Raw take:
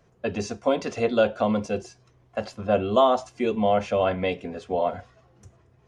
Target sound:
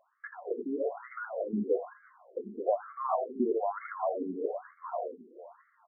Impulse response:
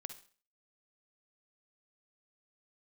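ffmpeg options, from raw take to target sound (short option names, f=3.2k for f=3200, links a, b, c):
-filter_complex "[0:a]asplit=2[a][b];[b]aecho=0:1:81|162|243:0.355|0.0993|0.0278[c];[a][c]amix=inputs=2:normalize=0,asplit=3[d][e][f];[d]afade=t=out:st=1.61:d=0.02[g];[e]afreqshift=-15,afade=t=in:st=1.61:d=0.02,afade=t=out:st=2.5:d=0.02[h];[f]afade=t=in:st=2.5:d=0.02[i];[g][h][i]amix=inputs=3:normalize=0,asplit=2[j][k];[k]adelay=328,lowpass=f=990:p=1,volume=-18.5dB,asplit=2[l][m];[m]adelay=328,lowpass=f=990:p=1,volume=0.31,asplit=2[n][o];[o]adelay=328,lowpass=f=990:p=1,volume=0.31[p];[l][n][p]amix=inputs=3:normalize=0[q];[j][q]amix=inputs=2:normalize=0,acompressor=threshold=-28dB:ratio=6,asettb=1/sr,asplit=3[r][s][t];[r]atrim=end=0.714[u];[s]atrim=start=0.71:end=1.11,asetpts=PTS-STARTPTS,afade=t=in:d=0.004:c=qsin,afade=t=out:st=0.396:d=0.004:c=qsin,aecho=1:1:7.1:0.84,atrim=end_sample=17640[v];[t]atrim=start=1.106[w];[u][v]acrossfade=d=0.004:c1=hsin:c2=qsin[x];[x][w]acrossfade=d=0.004:c1=qsin:c2=hsin,alimiter=limit=-24dB:level=0:latency=1:release=141,dynaudnorm=f=200:g=3:m=7.5dB,afftfilt=real='re*between(b*sr/1024,290*pow(1600/290,0.5+0.5*sin(2*PI*1.1*pts/sr))/1.41,290*pow(1600/290,0.5+0.5*sin(2*PI*1.1*pts/sr))*1.41)':imag='im*between(b*sr/1024,290*pow(1600/290,0.5+0.5*sin(2*PI*1.1*pts/sr))/1.41,290*pow(1600/290,0.5+0.5*sin(2*PI*1.1*pts/sr))*1.41)':win_size=1024:overlap=0.75"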